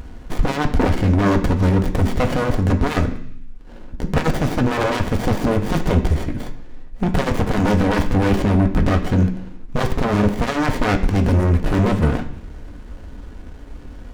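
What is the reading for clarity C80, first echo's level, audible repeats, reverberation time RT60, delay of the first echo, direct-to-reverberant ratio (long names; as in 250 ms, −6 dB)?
14.0 dB, no echo audible, no echo audible, 0.65 s, no echo audible, 4.0 dB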